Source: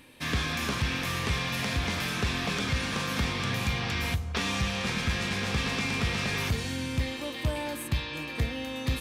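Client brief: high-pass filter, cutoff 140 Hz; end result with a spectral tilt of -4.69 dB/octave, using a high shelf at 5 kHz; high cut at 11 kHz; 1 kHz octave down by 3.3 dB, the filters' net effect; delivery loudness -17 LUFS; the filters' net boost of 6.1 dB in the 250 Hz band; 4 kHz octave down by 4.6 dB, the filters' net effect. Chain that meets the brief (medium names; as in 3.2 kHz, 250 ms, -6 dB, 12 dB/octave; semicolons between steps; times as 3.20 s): high-pass 140 Hz; low-pass 11 kHz; peaking EQ 250 Hz +8.5 dB; peaking EQ 1 kHz -4.5 dB; peaking EQ 4 kHz -8 dB; treble shelf 5 kHz +5 dB; trim +13 dB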